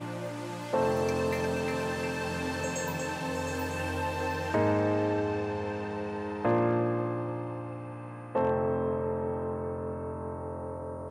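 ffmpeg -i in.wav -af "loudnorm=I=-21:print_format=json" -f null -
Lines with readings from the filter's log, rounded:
"input_i" : "-31.7",
"input_tp" : "-15.6",
"input_lra" : "2.2",
"input_thresh" : "-41.7",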